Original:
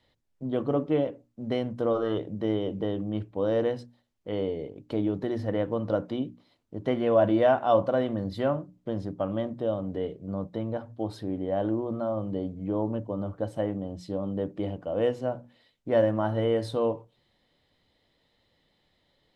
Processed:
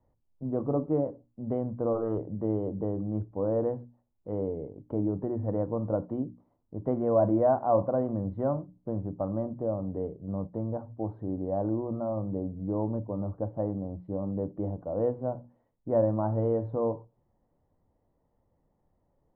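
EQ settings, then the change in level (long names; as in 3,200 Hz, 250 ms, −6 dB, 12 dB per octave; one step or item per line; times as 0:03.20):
transistor ladder low-pass 1,200 Hz, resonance 35%
low-shelf EQ 110 Hz +6.5 dB
low-shelf EQ 490 Hz +6 dB
0.0 dB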